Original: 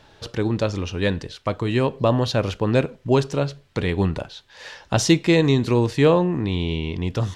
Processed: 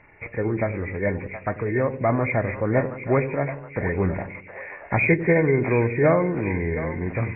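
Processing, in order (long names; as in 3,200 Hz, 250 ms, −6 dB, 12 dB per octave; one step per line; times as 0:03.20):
hearing-aid frequency compression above 1,400 Hz 4 to 1
echo with a time of its own for lows and highs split 480 Hz, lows 93 ms, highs 720 ms, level −11 dB
formants moved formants +3 semitones
level −2.5 dB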